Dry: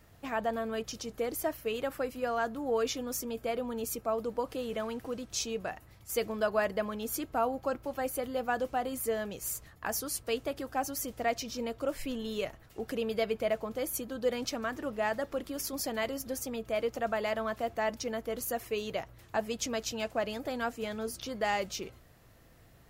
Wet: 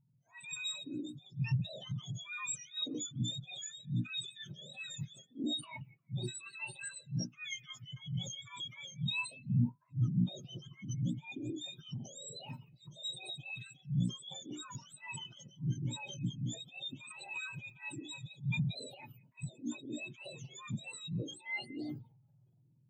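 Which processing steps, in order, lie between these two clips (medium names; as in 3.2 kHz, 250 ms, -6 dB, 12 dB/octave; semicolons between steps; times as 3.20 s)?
spectrum inverted on a logarithmic axis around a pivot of 1.3 kHz; hum notches 60/120/180/240/300/360/420/480 Hz; reverse; compression 5:1, threshold -44 dBFS, peak gain reduction 21 dB; reverse; transient shaper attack -10 dB, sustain +11 dB; on a send: repeats whose band climbs or falls 176 ms, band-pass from 2.6 kHz, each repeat -0.7 oct, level -7.5 dB; on the sum: spectral contrast expander 2.5:1; trim +10 dB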